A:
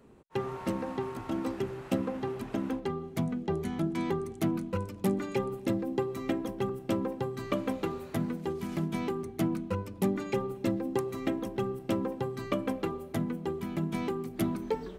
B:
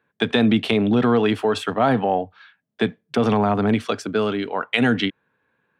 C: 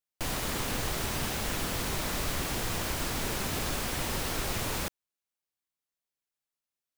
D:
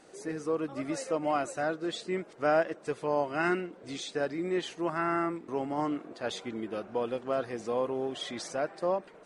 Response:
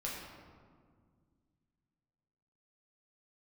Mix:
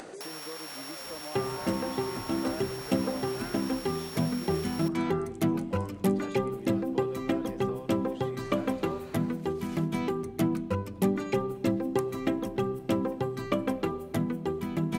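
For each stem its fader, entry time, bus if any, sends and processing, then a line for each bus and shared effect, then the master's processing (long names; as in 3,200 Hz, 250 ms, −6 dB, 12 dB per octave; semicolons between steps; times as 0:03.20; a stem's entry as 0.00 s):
+2.5 dB, 1.00 s, no send, no processing
muted
−8.5 dB, 0.00 s, send −17.5 dB, samples sorted by size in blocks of 8 samples; high-pass filter 670 Hz 12 dB per octave
−14.0 dB, 0.00 s, no send, multiband upward and downward compressor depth 70%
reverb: on, RT60 1.9 s, pre-delay 6 ms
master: upward compression, threshold −35 dBFS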